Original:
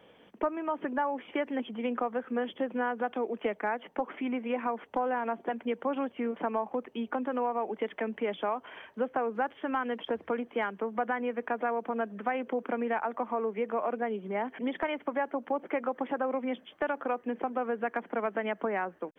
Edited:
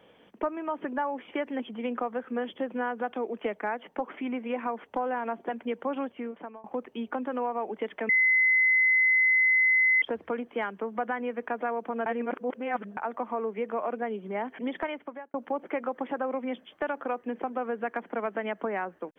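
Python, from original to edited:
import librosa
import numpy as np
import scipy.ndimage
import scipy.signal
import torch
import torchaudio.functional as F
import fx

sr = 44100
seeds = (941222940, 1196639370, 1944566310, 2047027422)

y = fx.edit(x, sr, fx.fade_out_to(start_s=6.01, length_s=0.63, floor_db=-24.0),
    fx.bleep(start_s=8.09, length_s=1.93, hz=2040.0, db=-19.0),
    fx.reverse_span(start_s=12.06, length_s=0.91),
    fx.fade_out_span(start_s=14.81, length_s=0.53), tone=tone)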